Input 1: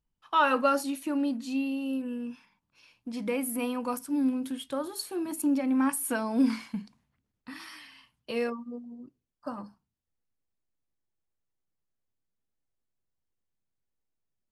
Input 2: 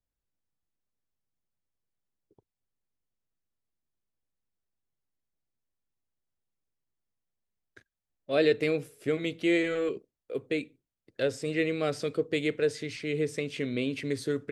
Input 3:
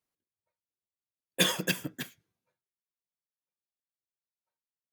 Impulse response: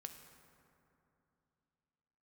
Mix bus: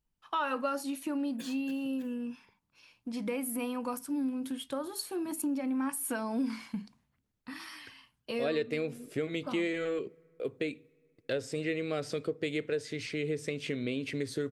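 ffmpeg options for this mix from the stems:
-filter_complex "[0:a]volume=-0.5dB,asplit=2[a][b];[1:a]agate=range=-33dB:threshold=-54dB:ratio=3:detection=peak,adelay=100,volume=1dB,asplit=2[c][d];[d]volume=-21.5dB[e];[2:a]acompressor=threshold=-30dB:ratio=3,volume=-14dB[f];[b]apad=whole_len=217041[g];[f][g]sidechaincompress=threshold=-36dB:ratio=8:attack=50:release=152[h];[3:a]atrim=start_sample=2205[i];[e][i]afir=irnorm=-1:irlink=0[j];[a][c][h][j]amix=inputs=4:normalize=0,acompressor=threshold=-32dB:ratio=2.5"

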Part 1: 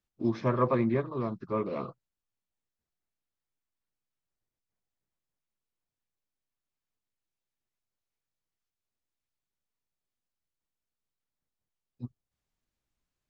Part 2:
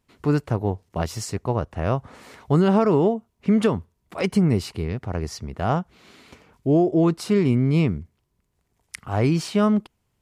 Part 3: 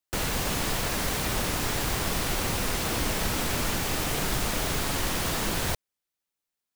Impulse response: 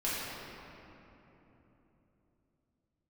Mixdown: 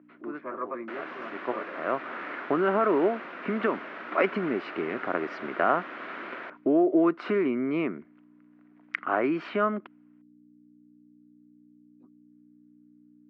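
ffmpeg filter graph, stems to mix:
-filter_complex "[0:a]volume=-5dB,asplit=2[a][b];[1:a]dynaudnorm=f=570:g=5:m=11.5dB,volume=2.5dB[c];[2:a]adelay=750,volume=-6dB[d];[b]apad=whole_len=450462[e];[c][e]sidechaincompress=threshold=-51dB:ratio=3:attack=27:release=245[f];[a][f]amix=inputs=2:normalize=0,aeval=exprs='val(0)+0.0126*(sin(2*PI*60*n/s)+sin(2*PI*2*60*n/s)/2+sin(2*PI*3*60*n/s)/3+sin(2*PI*4*60*n/s)/4+sin(2*PI*5*60*n/s)/5)':c=same,acompressor=threshold=-16dB:ratio=4,volume=0dB[g];[d][g]amix=inputs=2:normalize=0,highpass=f=310:w=0.5412,highpass=f=310:w=1.3066,equalizer=f=460:t=q:w=4:g=-8,equalizer=f=840:t=q:w=4:g=-8,equalizer=f=1.4k:t=q:w=4:g=5,lowpass=f=2.2k:w=0.5412,lowpass=f=2.2k:w=1.3066"

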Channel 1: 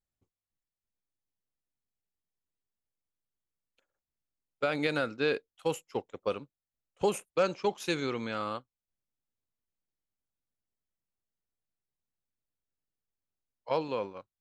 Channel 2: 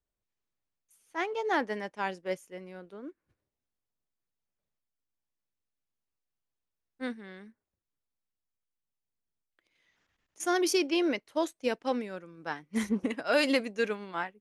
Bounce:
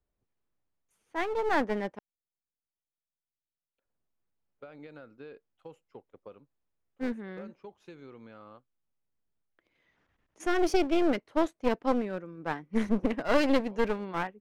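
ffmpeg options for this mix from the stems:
-filter_complex "[0:a]acompressor=threshold=-38dB:ratio=2.5,volume=-13.5dB[a];[1:a]volume=1dB,asplit=3[b][c][d];[b]atrim=end=1.99,asetpts=PTS-STARTPTS,afade=t=out:st=1.986:d=0.004:c=hsin[e];[c]atrim=start=1.99:end=3.85,asetpts=PTS-STARTPTS,volume=0[f];[d]atrim=start=3.85,asetpts=PTS-STARTPTS,afade=t=in:d=0.004:c=hsin[g];[e][f][g]concat=n=3:v=0:a=1,asplit=2[h][i];[i]apad=whole_len=635429[j];[a][j]sidechaincompress=threshold=-33dB:ratio=8:attack=16:release=760[k];[k][h]amix=inputs=2:normalize=0,lowpass=f=1.1k:p=1,acontrast=33,aeval=exprs='clip(val(0),-1,0.0178)':c=same"

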